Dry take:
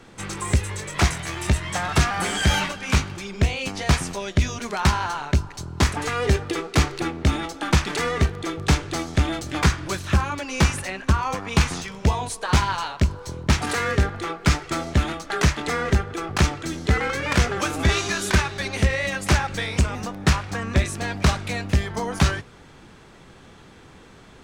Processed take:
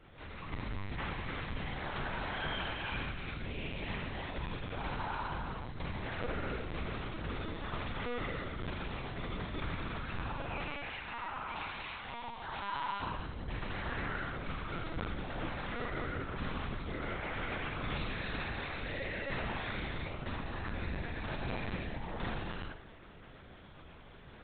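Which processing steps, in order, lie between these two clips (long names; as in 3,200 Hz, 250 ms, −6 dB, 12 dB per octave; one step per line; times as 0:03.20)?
0:10.45–0:13.02: high-pass filter 550 Hz 24 dB per octave
downward compressor 1.5 to 1, threshold −42 dBFS, peak gain reduction 10.5 dB
flanger 1.4 Hz, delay 0.4 ms, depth 3.5 ms, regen +72%
soft clipping −23 dBFS, distortion −20 dB
flutter between parallel walls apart 7.1 metres, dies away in 0.47 s
reverb whose tail is shaped and stops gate 420 ms flat, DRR −4.5 dB
linear-prediction vocoder at 8 kHz pitch kept
level −8 dB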